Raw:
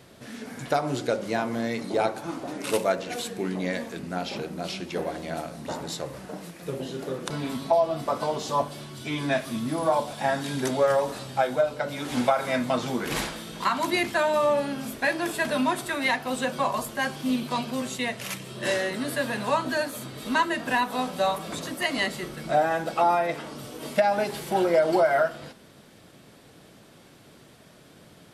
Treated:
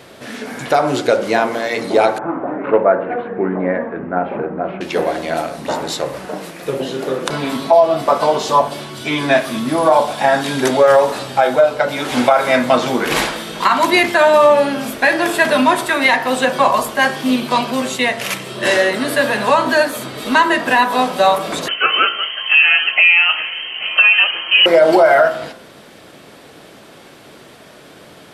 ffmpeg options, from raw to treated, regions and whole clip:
-filter_complex "[0:a]asettb=1/sr,asplit=3[s0][s1][s2];[s0]atrim=end=2.184[s3];[s1]atrim=start=2.18:end=4.81,asetpts=PTS-STARTPTS,afade=t=in:d=0.004:c=qsin,afade=t=out:st=2.626:d=0.004:c=qsin,lowpass=f=1700:w=0.5412,lowpass=f=1700:w=1.3066,aemphasis=mode=reproduction:type=50fm[s4];[s2]atrim=start=4.806[s5];[s3][s4]acrossfade=d=0.004:c1=hsin:c2=qsin[s6];[s6][s5]acrossfade=d=0.004:c1=qsin:c2=hsin,asettb=1/sr,asplit=3[s7][s8][s9];[s7]atrim=end=21.684[s10];[s8]atrim=start=21.68:end=24.66,asetpts=PTS-STARTPTS,afade=t=in:d=0.004:c=qsin,afade=t=out:st=2.976:d=0.004:c=qsin,aecho=1:1:833:0.0944,atrim=end_sample=131418,lowpass=f=2800:t=q:w=0.5098,lowpass=f=2800:t=q:w=0.6013,lowpass=f=2800:t=q:w=0.9,lowpass=f=2800:t=q:w=2.563,afreqshift=-3300[s11];[s9]atrim=start=24.656[s12];[s10][s11]acrossfade=d=0.004:c1=hsin:c2=qsin[s13];[s13][s12]acrossfade=d=0.004:c1=qsin:c2=hsin,bass=f=250:g=-9,treble=f=4000:g=-5,bandreject=f=57.83:t=h:w=4,bandreject=f=115.66:t=h:w=4,bandreject=f=173.49:t=h:w=4,bandreject=f=231.32:t=h:w=4,bandreject=f=289.15:t=h:w=4,bandreject=f=346.98:t=h:w=4,bandreject=f=404.81:t=h:w=4,bandreject=f=462.64:t=h:w=4,bandreject=f=520.47:t=h:w=4,bandreject=f=578.3:t=h:w=4,bandreject=f=636.13:t=h:w=4,bandreject=f=693.96:t=h:w=4,bandreject=f=751.79:t=h:w=4,bandreject=f=809.62:t=h:w=4,bandreject=f=867.45:t=h:w=4,bandreject=f=925.28:t=h:w=4,bandreject=f=983.11:t=h:w=4,bandreject=f=1040.94:t=h:w=4,bandreject=f=1098.77:t=h:w=4,bandreject=f=1156.6:t=h:w=4,bandreject=f=1214.43:t=h:w=4,bandreject=f=1272.26:t=h:w=4,bandreject=f=1330.09:t=h:w=4,bandreject=f=1387.92:t=h:w=4,bandreject=f=1445.75:t=h:w=4,bandreject=f=1503.58:t=h:w=4,bandreject=f=1561.41:t=h:w=4,bandreject=f=1619.24:t=h:w=4,bandreject=f=1677.07:t=h:w=4,bandreject=f=1734.9:t=h:w=4,bandreject=f=1792.73:t=h:w=4,bandreject=f=1850.56:t=h:w=4,bandreject=f=1908.39:t=h:w=4,bandreject=f=1966.22:t=h:w=4,bandreject=f=2024.05:t=h:w=4,bandreject=f=2081.88:t=h:w=4,alimiter=level_in=5.62:limit=0.891:release=50:level=0:latency=1,volume=0.891"

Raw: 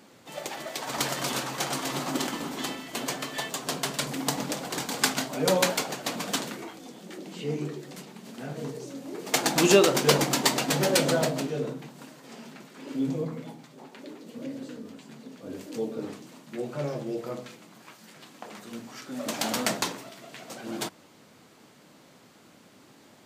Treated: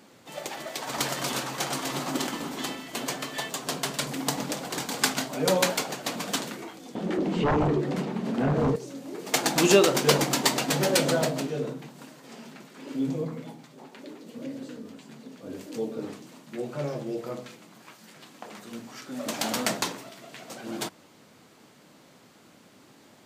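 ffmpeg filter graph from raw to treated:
-filter_complex "[0:a]asettb=1/sr,asplit=3[s0][s1][s2];[s0]atrim=end=6.954[s3];[s1]atrim=start=6.95:end=8.76,asetpts=PTS-STARTPTS,afade=t=in:d=0.004:c=qsin,afade=t=out:st=1.806:d=0.004:c=qsin,lowpass=f=1000:p=1,aeval=exprs='0.106*sin(PI/2*3.98*val(0)/0.106)':c=same[s4];[s2]atrim=start=8.756[s5];[s3][s4]acrossfade=d=0.004:c1=hsin:c2=qsin[s6];[s6][s5]acrossfade=d=0.004:c1=qsin:c2=hsin"

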